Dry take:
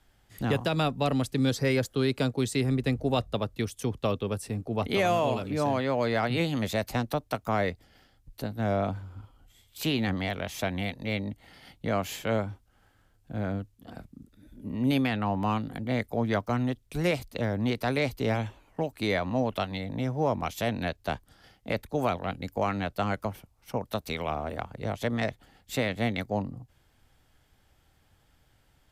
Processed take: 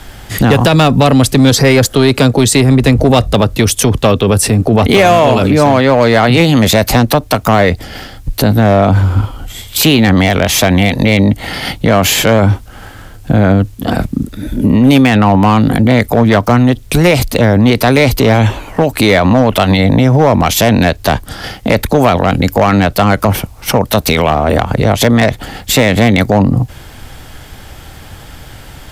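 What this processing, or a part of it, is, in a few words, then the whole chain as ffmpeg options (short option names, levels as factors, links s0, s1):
loud club master: -af "acompressor=threshold=0.02:ratio=1.5,asoftclip=type=hard:threshold=0.0562,alimiter=level_in=47.3:limit=0.891:release=50:level=0:latency=1,volume=0.891"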